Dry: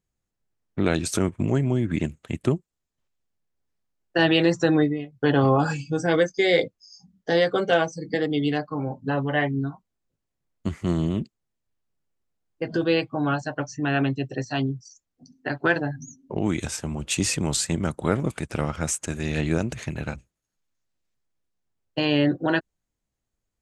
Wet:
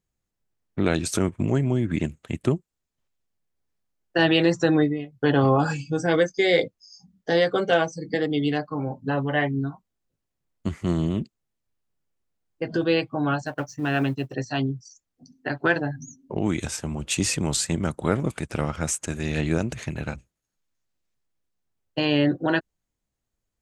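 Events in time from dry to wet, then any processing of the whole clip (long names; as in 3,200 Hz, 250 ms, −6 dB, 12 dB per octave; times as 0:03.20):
0:13.46–0:14.34: mu-law and A-law mismatch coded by A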